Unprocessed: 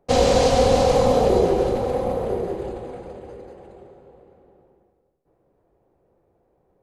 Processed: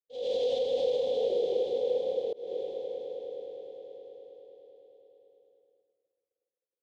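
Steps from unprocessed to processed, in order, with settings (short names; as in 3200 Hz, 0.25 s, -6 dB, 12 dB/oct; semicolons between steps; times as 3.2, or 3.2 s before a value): in parallel at -4 dB: crossover distortion -35 dBFS; on the sum: double band-pass 1300 Hz, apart 2.8 oct; limiter -15.5 dBFS, peak gain reduction 8 dB; swelling echo 0.104 s, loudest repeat 5, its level -14 dB; auto swell 0.237 s; expander -56 dBFS; gain -6.5 dB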